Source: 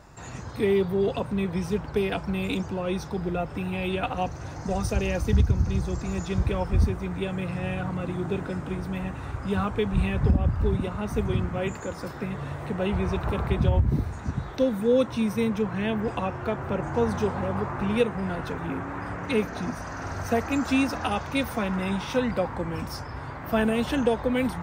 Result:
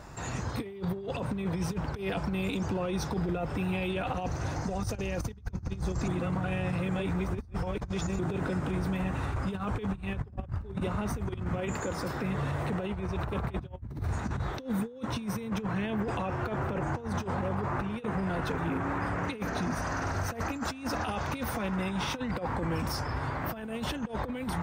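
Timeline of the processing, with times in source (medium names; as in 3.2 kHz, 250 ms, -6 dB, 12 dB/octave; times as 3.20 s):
6.08–8.19 s: reverse
whole clip: dynamic bell 100 Hz, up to +3 dB, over -34 dBFS, Q 2.3; compressor with a negative ratio -29 dBFS, ratio -0.5; peak limiter -23 dBFS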